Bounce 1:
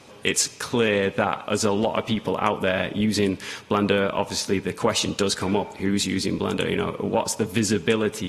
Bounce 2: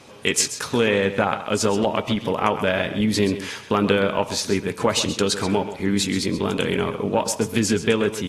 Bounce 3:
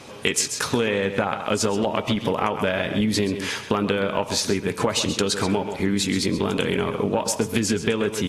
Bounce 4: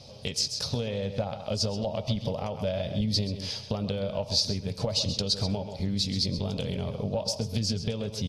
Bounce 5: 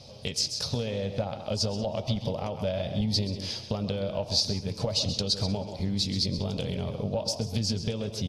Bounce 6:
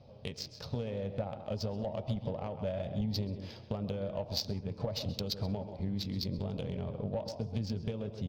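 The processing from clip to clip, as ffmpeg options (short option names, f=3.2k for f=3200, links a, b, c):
-af "aecho=1:1:131:0.251,volume=1.5dB"
-af "acompressor=threshold=-23dB:ratio=6,volume=4.5dB"
-af "firequalizer=gain_entry='entry(100,0);entry(340,-21);entry(580,-5);entry(1000,-20);entry(1600,-25);entry(4800,2);entry(7200,-17)':delay=0.05:min_phase=1,volume=2dB"
-filter_complex "[0:a]asplit=4[a][b][c][d];[b]adelay=186,afreqshift=130,volume=-20dB[e];[c]adelay=372,afreqshift=260,volume=-29.6dB[f];[d]adelay=558,afreqshift=390,volume=-39.3dB[g];[a][e][f][g]amix=inputs=4:normalize=0"
-af "adynamicsmooth=sensitivity=1.5:basefreq=1.8k,volume=-5.5dB"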